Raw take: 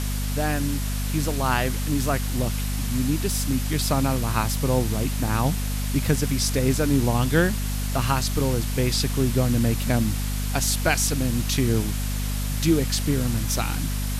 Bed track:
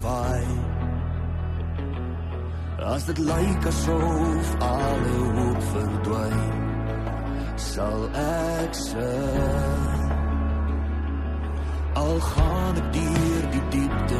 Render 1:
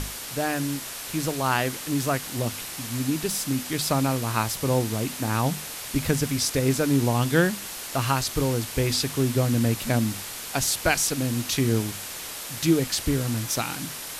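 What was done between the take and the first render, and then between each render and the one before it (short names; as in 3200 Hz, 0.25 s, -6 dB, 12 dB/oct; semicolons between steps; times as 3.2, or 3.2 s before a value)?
notches 50/100/150/200/250 Hz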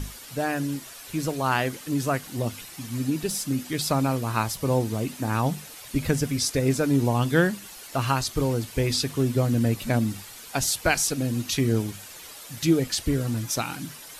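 denoiser 10 dB, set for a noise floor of -36 dBFS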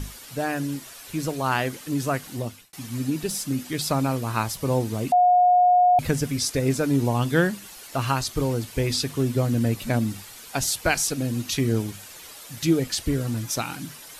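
2.33–2.73 fade out; 5.12–5.99 bleep 720 Hz -13.5 dBFS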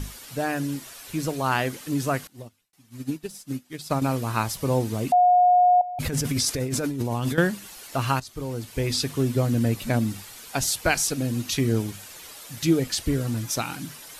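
2.27–4.02 upward expander 2.5:1, over -35 dBFS; 5.81–7.38 negative-ratio compressor -27 dBFS; 8.2–9 fade in, from -15.5 dB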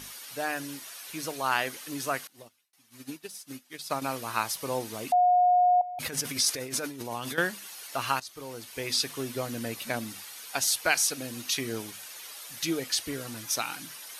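HPF 950 Hz 6 dB/oct; notch 7500 Hz, Q 11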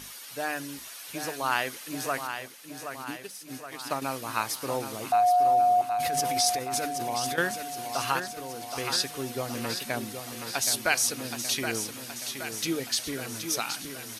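feedback echo 0.772 s, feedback 58%, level -8 dB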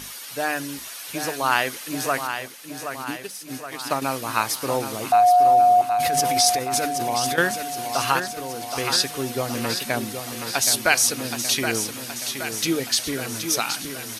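gain +6.5 dB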